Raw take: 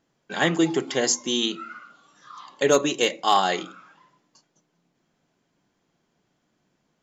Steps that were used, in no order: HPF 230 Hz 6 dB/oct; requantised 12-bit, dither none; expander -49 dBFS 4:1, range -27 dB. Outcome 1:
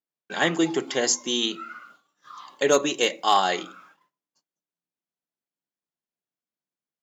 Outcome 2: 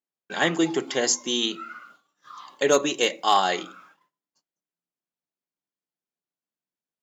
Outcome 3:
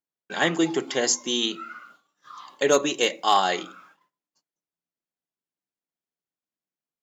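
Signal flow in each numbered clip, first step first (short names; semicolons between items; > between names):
requantised > expander > HPF; requantised > HPF > expander; HPF > requantised > expander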